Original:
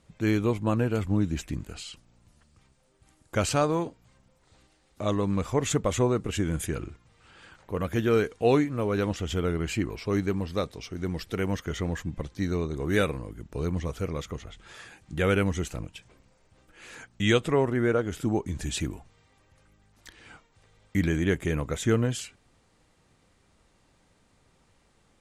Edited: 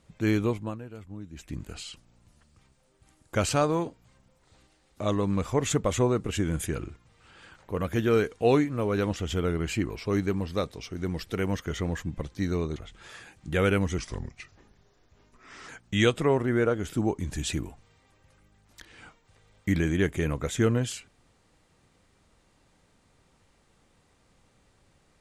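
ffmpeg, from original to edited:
-filter_complex "[0:a]asplit=6[a][b][c][d][e][f];[a]atrim=end=0.79,asetpts=PTS-STARTPTS,afade=t=out:st=0.42:d=0.37:silence=0.158489[g];[b]atrim=start=0.79:end=1.32,asetpts=PTS-STARTPTS,volume=-16dB[h];[c]atrim=start=1.32:end=12.762,asetpts=PTS-STARTPTS,afade=t=in:d=0.37:silence=0.158489[i];[d]atrim=start=14.408:end=15.634[j];[e]atrim=start=15.63:end=16.96,asetpts=PTS-STARTPTS,asetrate=34398,aresample=44100,atrim=end_sample=75196,asetpts=PTS-STARTPTS[k];[f]atrim=start=16.956[l];[g][h][i]concat=n=3:v=0:a=1[m];[m][j]acrossfade=d=0.004:c1=hsin:c2=hsin[n];[n][k]acrossfade=d=0.004:c1=hsin:c2=hsin[o];[o][l]acrossfade=d=0.004:c1=hsin:c2=hsin"

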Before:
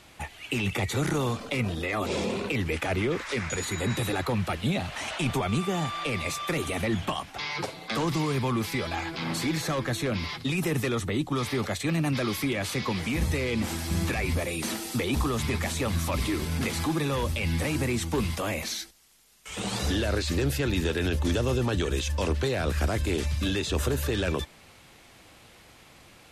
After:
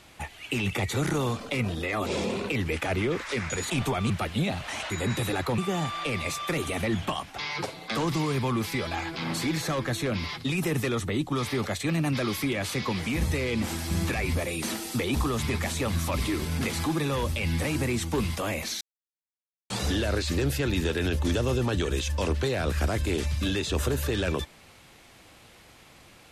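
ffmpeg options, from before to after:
-filter_complex "[0:a]asplit=7[a][b][c][d][e][f][g];[a]atrim=end=3.702[h];[b]atrim=start=5.178:end=5.582[i];[c]atrim=start=4.378:end=5.182[j];[d]atrim=start=3.698:end=4.382[k];[e]atrim=start=5.578:end=18.81,asetpts=PTS-STARTPTS,afade=t=out:st=13.228:d=0.004:c=hsin[l];[f]atrim=start=18.81:end=19.7,asetpts=PTS-STARTPTS,volume=0[m];[g]atrim=start=19.7,asetpts=PTS-STARTPTS,afade=t=in:d=0.004:c=hsin[n];[h][i]acrossfade=d=0.004:c1=hsin:c2=hsin[o];[o][j]acrossfade=d=0.004:c1=hsin:c2=hsin[p];[p][k]acrossfade=d=0.004:c1=hsin:c2=hsin[q];[l][m][n]concat=n=3:v=0:a=1[r];[q][r]acrossfade=d=0.004:c1=hsin:c2=hsin"

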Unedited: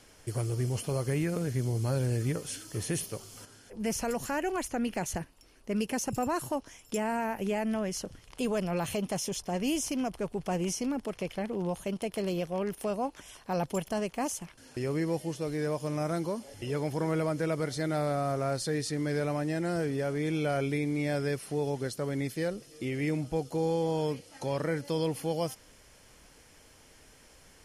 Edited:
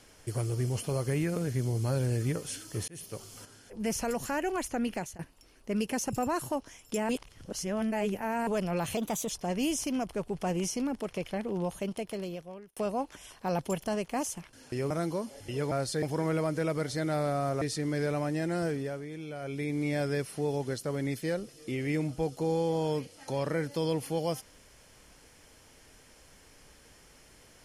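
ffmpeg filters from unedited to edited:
-filter_complex "[0:a]asplit=14[a][b][c][d][e][f][g][h][i][j][k][l][m][n];[a]atrim=end=2.88,asetpts=PTS-STARTPTS,afade=t=out:st=2.876:d=0.004:c=hsin[o];[b]atrim=start=2.88:end=5.19,asetpts=PTS-STARTPTS,afade=t=in:d=0.34,afade=t=out:st=2.05:d=0.26:silence=0.0630957[p];[c]atrim=start=5.19:end=7.092,asetpts=PTS-STARTPTS,afade=t=in:d=0.004:c=hsin:silence=0.0630957[q];[d]atrim=start=7.088:end=8.472,asetpts=PTS-STARTPTS,areverse[r];[e]atrim=start=8.468:end=8.974[s];[f]atrim=start=8.97:end=9.34,asetpts=PTS-STARTPTS,asetrate=50274,aresample=44100,atrim=end_sample=14313,asetpts=PTS-STARTPTS[t];[g]atrim=start=9.336:end=12.81,asetpts=PTS-STARTPTS,afade=t=out:st=2.504:d=0.97[u];[h]atrim=start=12.81:end=14.952,asetpts=PTS-STARTPTS,afade=t=in:d=0.004:c=hsin[v];[i]atrim=start=16.038:end=16.852[w];[j]atrim=start=18.438:end=18.752[x];[k]atrim=start=16.848:end=18.442[y];[l]atrim=start=18.748:end=20.21,asetpts=PTS-STARTPTS,afade=t=out:st=1.042:d=0.42:silence=0.298538[z];[m]atrim=start=20.21:end=20.53,asetpts=PTS-STARTPTS,volume=-10.5dB[aa];[n]atrim=start=20.53,asetpts=PTS-STARTPTS,afade=t=in:d=0.42:silence=0.298538[ab];[o][p][q]concat=n=3:v=0:a=1[ac];[ac][r]acrossfade=d=0.004:c1=hsin:c2=hsin[ad];[ad][s]acrossfade=d=0.004:c1=hsin:c2=hsin[ae];[ae][t]acrossfade=d=0.004:c1=hsin:c2=hsin[af];[u][v]concat=n=2:v=0:a=1[ag];[af][ag]acrossfade=d=0.004:c1=hsin:c2=hsin[ah];[ah][w]acrossfade=d=0.004:c1=hsin:c2=hsin[ai];[ai][x]acrossfade=d=0.004:c1=hsin:c2=hsin[aj];[aj][y]acrossfade=d=0.004:c1=hsin:c2=hsin[ak];[z][aa][ab]concat=n=3:v=0:a=1[al];[ak][al]acrossfade=d=0.004:c1=hsin:c2=hsin"

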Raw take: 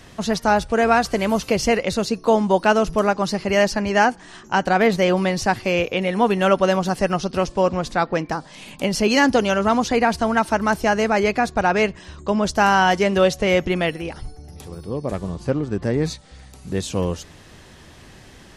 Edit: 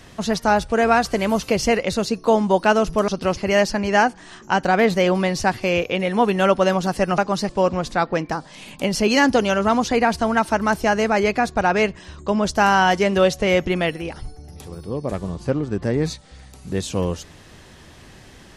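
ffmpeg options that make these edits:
-filter_complex "[0:a]asplit=5[a][b][c][d][e];[a]atrim=end=3.082[f];[b]atrim=start=7.198:end=7.492[g];[c]atrim=start=3.388:end=7.202[h];[d]atrim=start=3.078:end=3.392[i];[e]atrim=start=7.488[j];[f][g]acrossfade=d=0.004:c1=hsin:c2=hsin[k];[k][h]acrossfade=d=0.004:c1=hsin:c2=hsin[l];[l][i]acrossfade=d=0.004:c1=hsin:c2=hsin[m];[m][j]acrossfade=d=0.004:c1=hsin:c2=hsin"

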